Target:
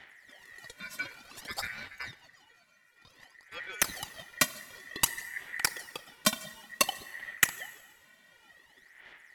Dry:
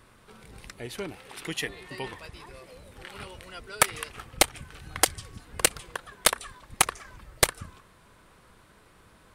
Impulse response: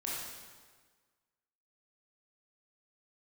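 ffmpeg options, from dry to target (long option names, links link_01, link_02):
-filter_complex "[0:a]asplit=3[link_01][link_02][link_03];[link_01]afade=type=out:start_time=1.87:duration=0.02[link_04];[link_02]agate=range=-11dB:threshold=-37dB:ratio=16:detection=peak,afade=type=in:start_time=1.87:duration=0.02,afade=type=out:start_time=3.51:duration=0.02[link_05];[link_03]afade=type=in:start_time=3.51:duration=0.02[link_06];[link_04][link_05][link_06]amix=inputs=3:normalize=0,aphaser=in_gain=1:out_gain=1:delay=2.4:decay=0.79:speed=0.55:type=sinusoidal,aeval=exprs='val(0)*sin(2*PI*1900*n/s)':channel_layout=same,asplit=2[link_07][link_08];[1:a]atrim=start_sample=2205,highshelf=frequency=11000:gain=8[link_09];[link_08][link_09]afir=irnorm=-1:irlink=0,volume=-18.5dB[link_10];[link_07][link_10]amix=inputs=2:normalize=0,volume=-6.5dB"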